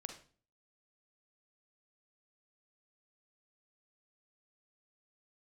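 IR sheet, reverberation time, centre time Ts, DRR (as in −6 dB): 0.40 s, 17 ms, 5.0 dB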